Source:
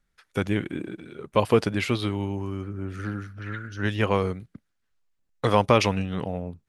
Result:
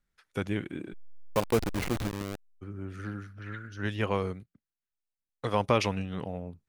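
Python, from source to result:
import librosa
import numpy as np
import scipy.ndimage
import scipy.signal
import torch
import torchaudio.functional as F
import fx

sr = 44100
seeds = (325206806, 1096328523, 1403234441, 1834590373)

y = fx.delta_hold(x, sr, step_db=-20.5, at=(0.92, 2.61), fade=0.02)
y = fx.upward_expand(y, sr, threshold_db=-40.0, expansion=1.5, at=(4.42, 5.59), fade=0.02)
y = F.gain(torch.from_numpy(y), -6.0).numpy()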